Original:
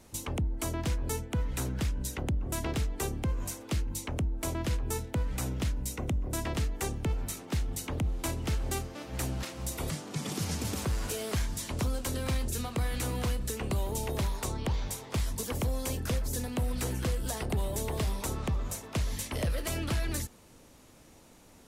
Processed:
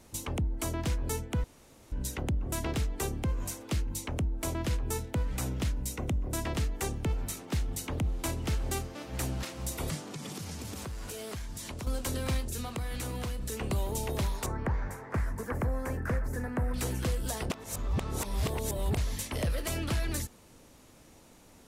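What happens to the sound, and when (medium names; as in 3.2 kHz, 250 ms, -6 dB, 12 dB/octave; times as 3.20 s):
1.44–1.92 s: room tone
9.99–11.87 s: compression, threshold -36 dBFS
12.40–13.52 s: compression, threshold -31 dBFS
14.46–16.74 s: resonant high shelf 2.4 kHz -12 dB, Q 3
17.50–18.97 s: reverse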